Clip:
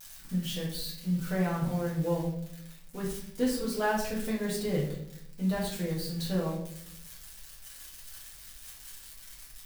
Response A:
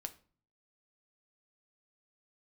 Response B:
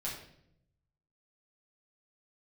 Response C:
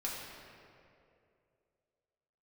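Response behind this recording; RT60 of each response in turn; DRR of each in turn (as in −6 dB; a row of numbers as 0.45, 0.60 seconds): B; 0.40, 0.70, 2.6 seconds; 7.0, −6.5, −5.5 decibels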